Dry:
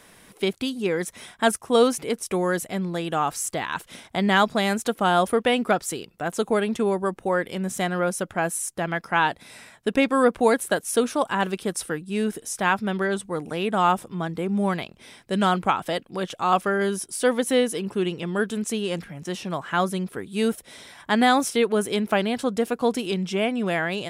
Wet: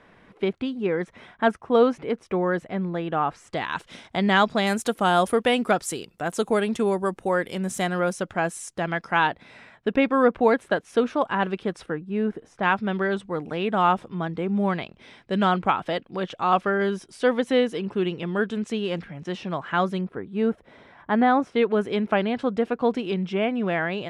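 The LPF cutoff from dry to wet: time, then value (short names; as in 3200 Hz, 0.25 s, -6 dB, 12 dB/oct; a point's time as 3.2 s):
2100 Hz
from 3.53 s 5400 Hz
from 4.67 s 12000 Hz
from 8.13 s 6200 Hz
from 9.27 s 2800 Hz
from 11.86 s 1600 Hz
from 12.63 s 3600 Hz
from 20.01 s 1500 Hz
from 21.56 s 2700 Hz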